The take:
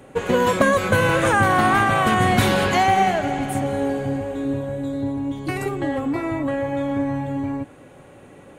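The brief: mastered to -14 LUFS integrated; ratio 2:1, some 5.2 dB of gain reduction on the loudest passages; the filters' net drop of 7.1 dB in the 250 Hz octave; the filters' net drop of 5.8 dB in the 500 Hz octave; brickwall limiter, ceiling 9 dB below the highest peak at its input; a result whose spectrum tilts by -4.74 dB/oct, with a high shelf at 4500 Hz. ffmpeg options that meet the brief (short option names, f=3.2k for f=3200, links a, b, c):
-af "equalizer=f=250:t=o:g=-7.5,equalizer=f=500:t=o:g=-5,highshelf=f=4.5k:g=-7,acompressor=threshold=-25dB:ratio=2,volume=16.5dB,alimiter=limit=-5dB:level=0:latency=1"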